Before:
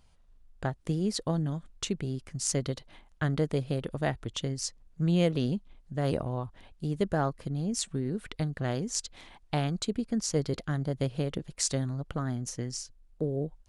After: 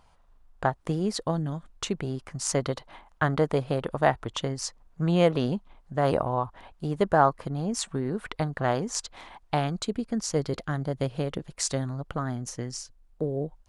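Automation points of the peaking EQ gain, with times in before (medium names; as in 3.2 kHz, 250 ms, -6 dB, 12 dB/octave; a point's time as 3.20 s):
peaking EQ 970 Hz 1.8 oct
0.96 s +12.5 dB
1.45 s +3.5 dB
2.05 s +13.5 dB
9.05 s +13.5 dB
9.69 s +6.5 dB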